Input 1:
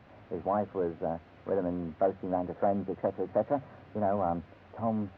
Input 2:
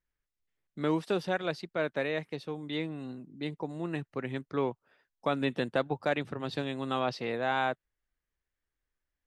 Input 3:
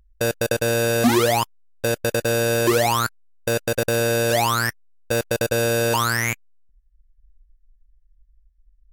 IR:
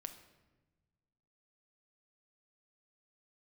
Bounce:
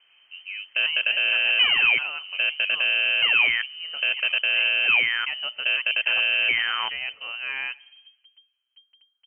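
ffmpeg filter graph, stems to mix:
-filter_complex "[0:a]volume=-7dB[link_01];[1:a]volume=-4dB,asplit=2[link_02][link_03];[link_03]volume=-5.5dB[link_04];[2:a]equalizer=frequency=740:width_type=o:width=0.98:gain=8,aeval=exprs='val(0)*gte(abs(val(0)),0.00447)':channel_layout=same,adelay=550,volume=-6dB,asplit=2[link_05][link_06];[link_06]volume=-21.5dB[link_07];[3:a]atrim=start_sample=2205[link_08];[link_04][link_07]amix=inputs=2:normalize=0[link_09];[link_09][link_08]afir=irnorm=-1:irlink=0[link_10];[link_01][link_02][link_05][link_10]amix=inputs=4:normalize=0,lowshelf=frequency=92:gain=8,lowpass=frequency=2700:width_type=q:width=0.5098,lowpass=frequency=2700:width_type=q:width=0.6013,lowpass=frequency=2700:width_type=q:width=0.9,lowpass=frequency=2700:width_type=q:width=2.563,afreqshift=-3200"

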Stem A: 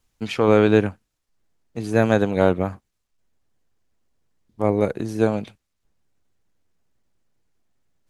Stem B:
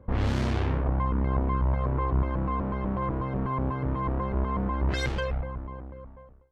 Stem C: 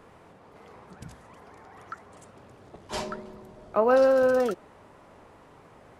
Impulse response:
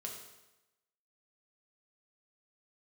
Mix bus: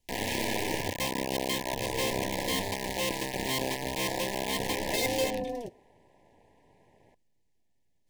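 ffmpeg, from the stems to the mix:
-filter_complex "[0:a]aeval=exprs='(tanh(8.91*val(0)+0.6)-tanh(0.6))/8.91':channel_layout=same,aeval=exprs='0.106*sin(PI/2*3.16*val(0)/0.106)':channel_layout=same,volume=-15dB[link_01];[1:a]highpass=290,bandreject=frequency=60:width_type=h:width=6,bandreject=frequency=120:width_type=h:width=6,bandreject=frequency=180:width_type=h:width=6,bandreject=frequency=240:width_type=h:width=6,bandreject=frequency=300:width_type=h:width=6,bandreject=frequency=360:width_type=h:width=6,bandreject=frequency=420:width_type=h:width=6,bandreject=frequency=480:width_type=h:width=6,bandreject=frequency=540:width_type=h:width=6,acrusher=bits=4:mix=0:aa=0.000001,volume=2dB[link_02];[2:a]acrossover=split=460|3000[link_03][link_04][link_05];[link_04]acompressor=threshold=-30dB:ratio=6[link_06];[link_03][link_06][link_05]amix=inputs=3:normalize=0,tremolo=f=230:d=0.919,adelay=1150,volume=-6dB,asplit=2[link_07][link_08];[link_08]volume=-17dB[link_09];[3:a]atrim=start_sample=2205[link_10];[link_09][link_10]afir=irnorm=-1:irlink=0[link_11];[link_01][link_02][link_07][link_11]amix=inputs=4:normalize=0,asuperstop=centerf=1300:order=20:qfactor=2"

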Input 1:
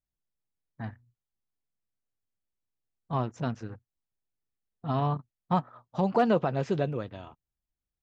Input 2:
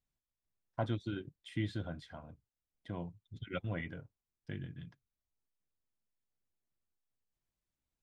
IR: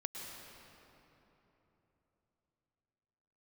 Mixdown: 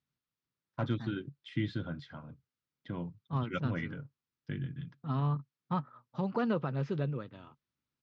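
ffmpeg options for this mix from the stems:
-filter_complex "[0:a]adelay=200,volume=-7.5dB[link_01];[1:a]asoftclip=type=hard:threshold=-24.5dB,volume=2dB[link_02];[link_01][link_02]amix=inputs=2:normalize=0,highpass=100,equalizer=frequency=140:width_type=q:width=4:gain=8,equalizer=frequency=250:width_type=q:width=4:gain=4,equalizer=frequency=700:width_type=q:width=4:gain=-8,equalizer=frequency=1300:width_type=q:width=4:gain=5,lowpass=frequency=5500:width=0.5412,lowpass=frequency=5500:width=1.3066"

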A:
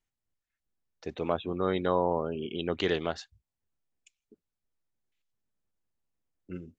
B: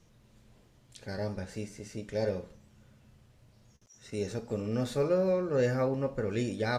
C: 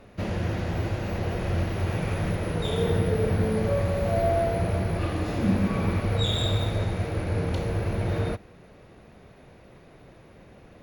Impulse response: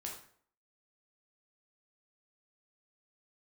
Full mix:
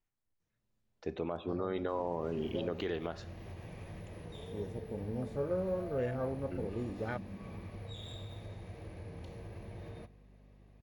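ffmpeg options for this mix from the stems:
-filter_complex "[0:a]highshelf=frequency=2700:gain=-10,bandreject=frequency=60:width_type=h:width=6,bandreject=frequency=120:width_type=h:width=6,bandreject=frequency=180:width_type=h:width=6,volume=-1.5dB,asplit=2[link_01][link_02];[link_02]volume=-8.5dB[link_03];[1:a]afwtdn=0.0158,adelay=400,volume=-7dB[link_04];[2:a]bandreject=frequency=1400:width=5.5,acompressor=threshold=-27dB:ratio=2.5,aeval=exprs='val(0)+0.00891*(sin(2*PI*50*n/s)+sin(2*PI*2*50*n/s)/2+sin(2*PI*3*50*n/s)/3+sin(2*PI*4*50*n/s)/4+sin(2*PI*5*50*n/s)/5)':channel_layout=same,adelay=1700,volume=-17.5dB,asplit=2[link_05][link_06];[link_06]volume=-14.5dB[link_07];[3:a]atrim=start_sample=2205[link_08];[link_03][link_07]amix=inputs=2:normalize=0[link_09];[link_09][link_08]afir=irnorm=-1:irlink=0[link_10];[link_01][link_04][link_05][link_10]amix=inputs=4:normalize=0,alimiter=limit=-24dB:level=0:latency=1:release=227"

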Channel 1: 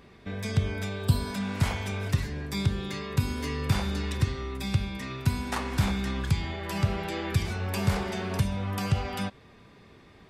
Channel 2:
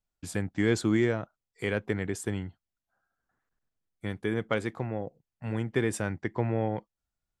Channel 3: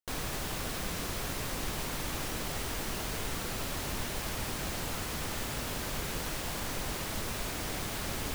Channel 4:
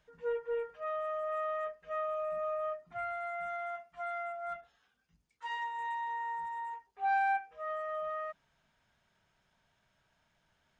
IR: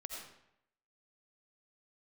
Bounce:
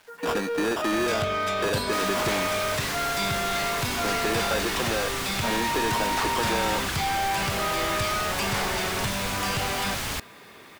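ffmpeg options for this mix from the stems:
-filter_complex "[0:a]adelay=650,volume=-9.5dB[link_01];[1:a]highpass=frequency=200:width=0.5412,highpass=frequency=200:width=1.3066,acompressor=threshold=-35dB:ratio=4,acrusher=samples=21:mix=1:aa=0.000001,volume=2dB,asplit=2[link_02][link_03];[link_03]volume=-17.5dB[link_04];[2:a]asubboost=boost=4.5:cutoff=160,adelay=1850,volume=-9dB[link_05];[3:a]asplit=2[link_06][link_07];[link_07]highpass=frequency=720:poles=1,volume=23dB,asoftclip=type=tanh:threshold=-21.5dB[link_08];[link_06][link_08]amix=inputs=2:normalize=0,lowpass=frequency=1800:poles=1,volume=-6dB,volume=-14.5dB[link_09];[4:a]atrim=start_sample=2205[link_10];[link_04][link_10]afir=irnorm=-1:irlink=0[link_11];[link_01][link_02][link_05][link_09][link_11]amix=inputs=5:normalize=0,asplit=2[link_12][link_13];[link_13]highpass=frequency=720:poles=1,volume=26dB,asoftclip=type=tanh:threshold=-16dB[link_14];[link_12][link_14]amix=inputs=2:normalize=0,lowpass=frequency=7000:poles=1,volume=-6dB,acrusher=bits=8:mix=0:aa=0.000001"

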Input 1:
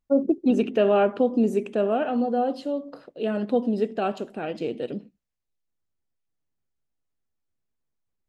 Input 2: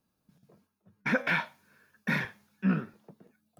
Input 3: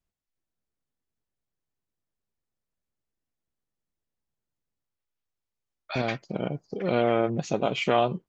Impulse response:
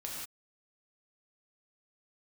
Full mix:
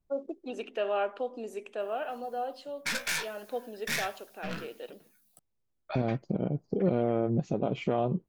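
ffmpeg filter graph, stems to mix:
-filter_complex "[0:a]highpass=620,volume=-6dB[link_01];[1:a]aeval=exprs='(tanh(35.5*val(0)+0.6)-tanh(0.6))/35.5':channel_layout=same,crystalizer=i=10:c=0,flanger=delay=9.2:depth=8.5:regen=41:speed=1.3:shape=triangular,adelay=1800,volume=-1.5dB[link_02];[2:a]tiltshelf=frequency=970:gain=9.5,volume=-1dB[link_03];[link_01][link_02][link_03]amix=inputs=3:normalize=0,alimiter=limit=-17dB:level=0:latency=1:release=325"

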